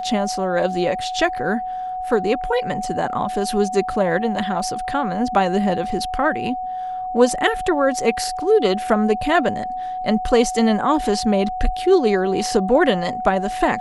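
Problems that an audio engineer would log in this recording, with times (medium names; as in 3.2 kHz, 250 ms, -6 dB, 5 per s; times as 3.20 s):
whine 740 Hz -24 dBFS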